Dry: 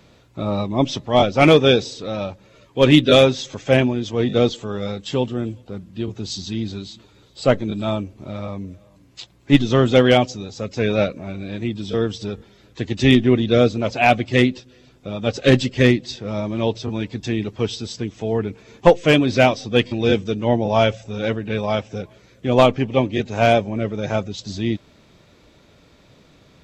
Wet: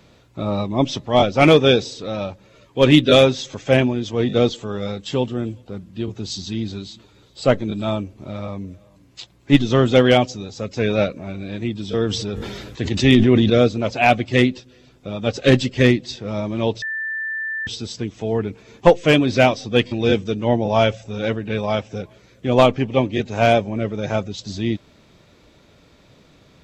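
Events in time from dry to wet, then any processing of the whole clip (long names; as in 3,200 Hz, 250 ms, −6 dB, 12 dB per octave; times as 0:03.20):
0:12.06–0:13.50: level that may fall only so fast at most 30 dB per second
0:16.82–0:17.67: beep over 1,770 Hz −23 dBFS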